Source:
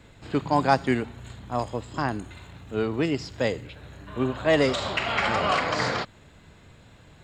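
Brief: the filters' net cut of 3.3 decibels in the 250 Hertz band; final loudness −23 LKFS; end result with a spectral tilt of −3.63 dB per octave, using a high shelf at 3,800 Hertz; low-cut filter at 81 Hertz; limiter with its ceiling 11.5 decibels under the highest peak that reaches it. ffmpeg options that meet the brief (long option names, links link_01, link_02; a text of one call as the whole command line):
ffmpeg -i in.wav -af "highpass=81,equalizer=frequency=250:width_type=o:gain=-4,highshelf=frequency=3800:gain=-3.5,volume=7.5dB,alimiter=limit=-11dB:level=0:latency=1" out.wav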